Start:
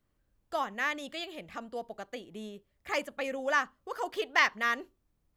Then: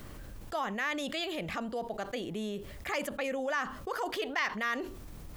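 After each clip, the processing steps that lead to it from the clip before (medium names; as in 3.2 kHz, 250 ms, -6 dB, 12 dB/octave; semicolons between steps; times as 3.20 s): level flattener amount 70%; trim -8 dB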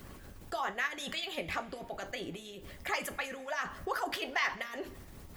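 harmonic-percussive split harmonic -15 dB; two-slope reverb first 0.23 s, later 1.6 s, from -18 dB, DRR 6.5 dB; trim +2 dB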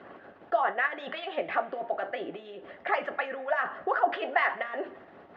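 tracing distortion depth 0.022 ms; cabinet simulation 380–2400 Hz, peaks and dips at 690 Hz +6 dB, 1 kHz -4 dB, 2.3 kHz -8 dB; trim +8 dB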